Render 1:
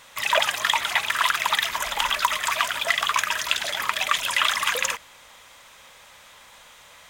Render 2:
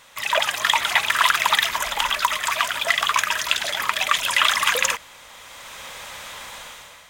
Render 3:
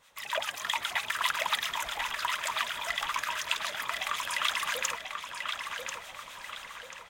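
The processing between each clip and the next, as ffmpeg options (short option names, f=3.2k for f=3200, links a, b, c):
-af "dynaudnorm=f=230:g=5:m=13.5dB,volume=-1dB"
-filter_complex "[0:a]acrossover=split=970[a][b];[a]aeval=exprs='val(0)*(1-0.7/2+0.7/2*cos(2*PI*7.5*n/s))':c=same[c];[b]aeval=exprs='val(0)*(1-0.7/2-0.7/2*cos(2*PI*7.5*n/s))':c=same[d];[c][d]amix=inputs=2:normalize=0,asplit=2[e][f];[f]adelay=1039,lowpass=f=5k:p=1,volume=-4.5dB,asplit=2[g][h];[h]adelay=1039,lowpass=f=5k:p=1,volume=0.46,asplit=2[i][j];[j]adelay=1039,lowpass=f=5k:p=1,volume=0.46,asplit=2[k][l];[l]adelay=1039,lowpass=f=5k:p=1,volume=0.46,asplit=2[m][n];[n]adelay=1039,lowpass=f=5k:p=1,volume=0.46,asplit=2[o][p];[p]adelay=1039,lowpass=f=5k:p=1,volume=0.46[q];[g][i][k][m][o][q]amix=inputs=6:normalize=0[r];[e][r]amix=inputs=2:normalize=0,volume=-8.5dB"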